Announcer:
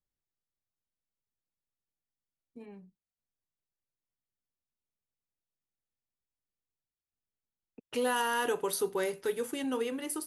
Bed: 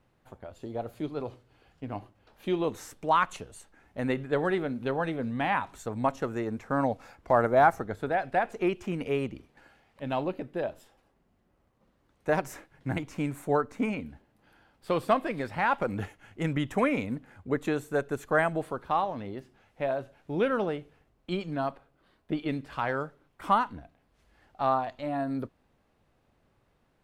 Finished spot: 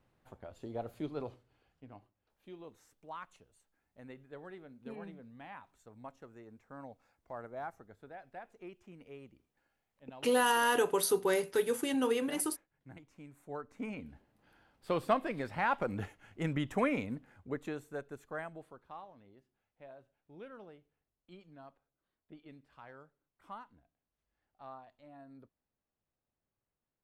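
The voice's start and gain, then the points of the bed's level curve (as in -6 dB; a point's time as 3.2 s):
2.30 s, +2.0 dB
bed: 1.22 s -5 dB
2.22 s -21.5 dB
13.29 s -21.5 dB
14.2 s -5 dB
16.95 s -5 dB
19.19 s -23 dB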